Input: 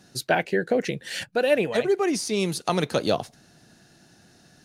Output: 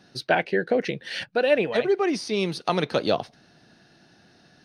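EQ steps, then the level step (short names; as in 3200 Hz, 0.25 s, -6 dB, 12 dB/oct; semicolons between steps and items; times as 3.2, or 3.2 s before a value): polynomial smoothing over 15 samples; low shelf 150 Hz -6.5 dB; +1.0 dB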